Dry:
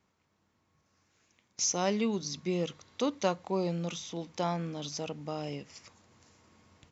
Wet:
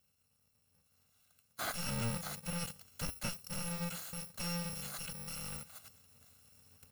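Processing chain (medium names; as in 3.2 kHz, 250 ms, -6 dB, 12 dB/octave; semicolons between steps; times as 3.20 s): bit-reversed sample order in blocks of 128 samples; slew-rate limiter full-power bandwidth 84 Hz; trim -1 dB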